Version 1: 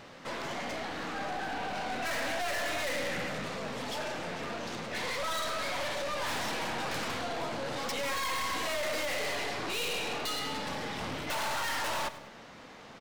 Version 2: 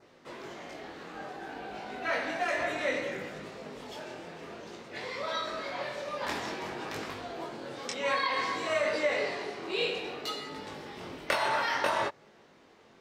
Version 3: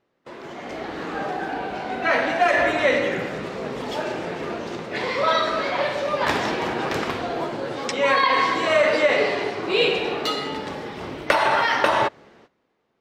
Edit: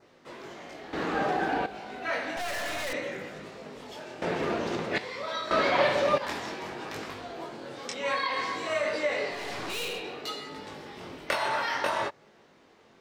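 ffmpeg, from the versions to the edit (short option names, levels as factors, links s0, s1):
-filter_complex "[2:a]asplit=3[s0][s1][s2];[0:a]asplit=2[s3][s4];[1:a]asplit=6[s5][s6][s7][s8][s9][s10];[s5]atrim=end=0.932[s11];[s0]atrim=start=0.928:end=1.662[s12];[s6]atrim=start=1.658:end=2.372[s13];[s3]atrim=start=2.368:end=2.932[s14];[s7]atrim=start=2.928:end=4.222[s15];[s1]atrim=start=4.218:end=4.982[s16];[s8]atrim=start=4.978:end=5.512[s17];[s2]atrim=start=5.508:end=6.182[s18];[s9]atrim=start=6.178:end=9.54[s19];[s4]atrim=start=9.3:end=10.04[s20];[s10]atrim=start=9.8[s21];[s11][s12]acrossfade=d=0.004:c1=hsin:c2=hsin[s22];[s22][s13]acrossfade=d=0.004:c1=hsin:c2=hsin[s23];[s23][s14]acrossfade=d=0.004:c1=hsin:c2=hsin[s24];[s24][s15]acrossfade=d=0.004:c1=hsin:c2=hsin[s25];[s25][s16]acrossfade=d=0.004:c1=hsin:c2=hsin[s26];[s26][s17]acrossfade=d=0.004:c1=hsin:c2=hsin[s27];[s27][s18]acrossfade=d=0.004:c1=hsin:c2=hsin[s28];[s28][s19]acrossfade=d=0.004:c1=hsin:c2=hsin[s29];[s29][s20]acrossfade=d=0.24:c1=tri:c2=tri[s30];[s30][s21]acrossfade=d=0.24:c1=tri:c2=tri"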